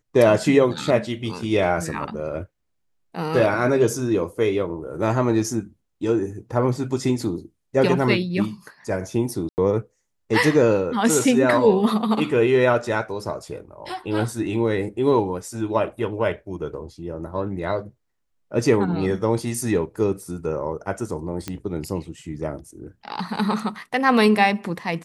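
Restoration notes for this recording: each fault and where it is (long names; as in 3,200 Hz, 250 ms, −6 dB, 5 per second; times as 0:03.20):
0:09.49–0:09.58: drop-out 89 ms
0:21.48: click −13 dBFS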